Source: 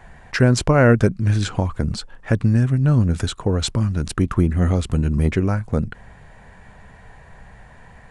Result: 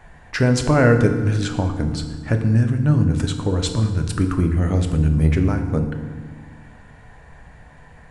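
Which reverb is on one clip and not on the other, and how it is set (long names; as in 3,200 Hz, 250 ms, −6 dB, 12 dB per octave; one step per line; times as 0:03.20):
feedback delay network reverb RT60 1.5 s, low-frequency decay 1.5×, high-frequency decay 0.7×, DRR 5 dB
level −2 dB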